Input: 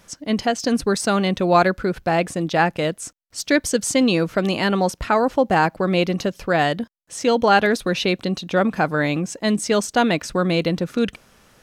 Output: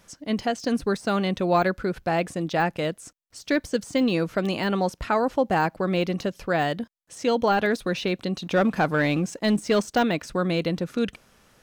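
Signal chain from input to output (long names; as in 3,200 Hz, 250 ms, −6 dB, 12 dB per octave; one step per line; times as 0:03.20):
de-essing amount 65%
0:08.42–0:10.03: leveller curve on the samples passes 1
level −4.5 dB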